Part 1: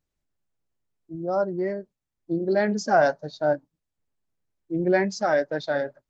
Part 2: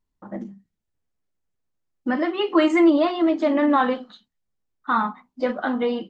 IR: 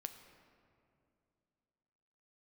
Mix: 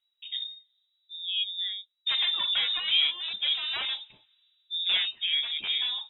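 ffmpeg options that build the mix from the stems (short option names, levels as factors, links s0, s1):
-filter_complex "[0:a]volume=0.501,asplit=2[s0][s1];[1:a]aeval=exprs='0.119*(abs(mod(val(0)/0.119+3,4)-2)-1)':c=same,volume=0.75,asplit=2[s2][s3];[s3]volume=0.0708[s4];[s1]apad=whole_len=268889[s5];[s2][s5]sidechaincompress=threshold=0.0316:ratio=8:attack=9.6:release=1410[s6];[2:a]atrim=start_sample=2205[s7];[s4][s7]afir=irnorm=-1:irlink=0[s8];[s0][s6][s8]amix=inputs=3:normalize=0,lowpass=f=3300:t=q:w=0.5098,lowpass=f=3300:t=q:w=0.6013,lowpass=f=3300:t=q:w=0.9,lowpass=f=3300:t=q:w=2.563,afreqshift=-3900"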